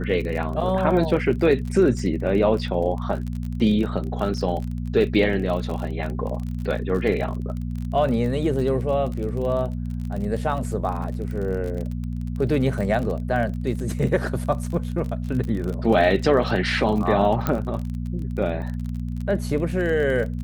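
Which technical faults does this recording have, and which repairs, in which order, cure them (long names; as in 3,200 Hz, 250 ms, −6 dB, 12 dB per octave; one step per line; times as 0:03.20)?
surface crackle 38 per second −29 dBFS
mains hum 60 Hz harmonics 4 −28 dBFS
0:17.47: click −9 dBFS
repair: click removal
hum removal 60 Hz, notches 4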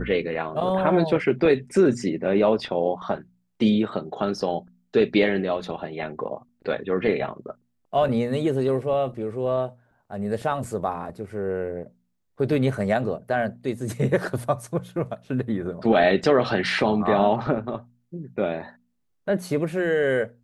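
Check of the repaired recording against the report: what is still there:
none of them is left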